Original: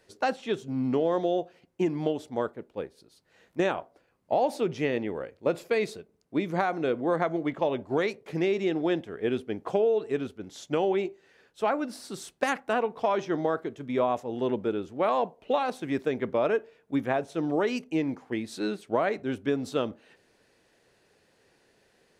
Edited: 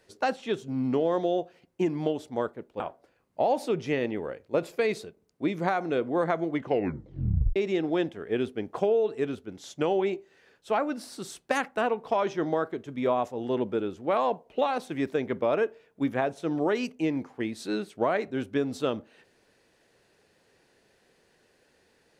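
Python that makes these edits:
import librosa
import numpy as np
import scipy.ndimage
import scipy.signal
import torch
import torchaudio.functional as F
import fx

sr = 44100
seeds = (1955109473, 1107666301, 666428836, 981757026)

y = fx.edit(x, sr, fx.cut(start_s=2.8, length_s=0.92),
    fx.tape_stop(start_s=7.48, length_s=1.0), tone=tone)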